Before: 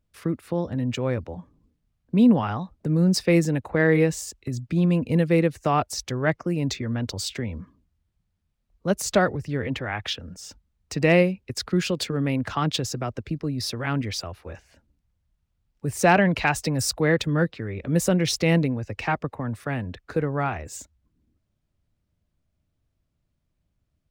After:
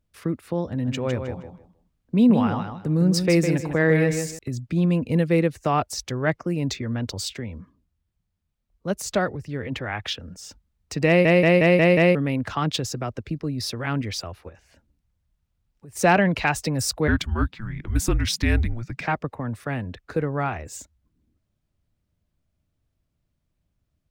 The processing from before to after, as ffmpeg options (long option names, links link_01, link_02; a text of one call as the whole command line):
ffmpeg -i in.wav -filter_complex "[0:a]asettb=1/sr,asplit=3[link_01][link_02][link_03];[link_01]atrim=end=0.694[link_04];[link_02]atrim=start=0.69:end=4.39,asetpts=PTS-STARTPTS,afade=type=in:duration=0.004:curve=qsin,afade=type=out:start_time=3.696:duration=0.004:curve=qsin,aecho=1:1:156|312|468:0.447|0.103|0.0236,atrim=end_sample=163170[link_05];[link_03]atrim=start=4.386[link_06];[link_04][link_05]acrossfade=duration=0.004:curve1=hsin:curve2=qsin[link_07];[link_07][link_06]acrossfade=duration=0.004:curve1=qsin:curve2=hsin,asplit=3[link_08][link_09][link_10];[link_08]afade=type=out:start_time=14.48:duration=0.02[link_11];[link_09]acompressor=threshold=-49dB:ratio=2.5:attack=3.2:release=140:knee=1:detection=peak,afade=type=in:start_time=14.48:duration=0.02,afade=type=out:start_time=15.95:duration=0.02[link_12];[link_10]afade=type=in:start_time=15.95:duration=0.02[link_13];[link_11][link_12][link_13]amix=inputs=3:normalize=0,asplit=3[link_14][link_15][link_16];[link_14]afade=type=out:start_time=17.07:duration=0.02[link_17];[link_15]afreqshift=-230,afade=type=in:start_time=17.07:duration=0.02,afade=type=out:start_time=19.06:duration=0.02[link_18];[link_16]afade=type=in:start_time=19.06:duration=0.02[link_19];[link_17][link_18][link_19]amix=inputs=3:normalize=0,asplit=9[link_20][link_21][link_22][link_23][link_24][link_25][link_26][link_27][link_28];[link_20]atrim=end=7.332[link_29];[link_21]atrim=start=7.328:end=9.722,asetpts=PTS-STARTPTS,volume=-3dB[link_30];[link_22]atrim=start=9.718:end=11.252[link_31];[link_23]atrim=start=11.068:end=11.252[link_32];[link_24]atrim=start=11.068:end=11.252[link_33];[link_25]atrim=start=11.068:end=11.252[link_34];[link_26]atrim=start=11.068:end=11.252[link_35];[link_27]atrim=start=11.068:end=11.252[link_36];[link_28]atrim=start=12.148[link_37];[link_29][link_30]acrossfade=duration=0.004:curve1=hsin:curve2=hsin[link_38];[link_38][link_31]acrossfade=duration=0.004:curve1=hsin:curve2=hsin[link_39];[link_39][link_32]acrossfade=duration=0.004:curve1=hsin:curve2=hsin[link_40];[link_40][link_33]acrossfade=duration=0.004:curve1=hsin:curve2=hsin[link_41];[link_41][link_34]acrossfade=duration=0.004:curve1=hsin:curve2=hsin[link_42];[link_42][link_35]acrossfade=duration=0.004:curve1=hsin:curve2=hsin[link_43];[link_43][link_36]acrossfade=duration=0.004:curve1=hsin:curve2=hsin[link_44];[link_44][link_37]acrossfade=duration=0.004:curve1=hsin:curve2=hsin" out.wav